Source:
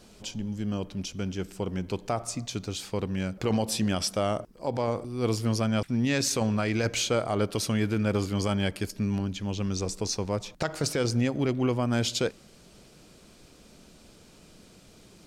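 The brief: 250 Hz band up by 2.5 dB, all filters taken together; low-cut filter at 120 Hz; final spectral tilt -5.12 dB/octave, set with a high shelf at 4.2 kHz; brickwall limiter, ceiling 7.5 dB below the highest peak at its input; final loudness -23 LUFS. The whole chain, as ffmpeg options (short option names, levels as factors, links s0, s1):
-af "highpass=120,equalizer=f=250:t=o:g=3.5,highshelf=f=4200:g=-5.5,volume=2.66,alimiter=limit=0.266:level=0:latency=1"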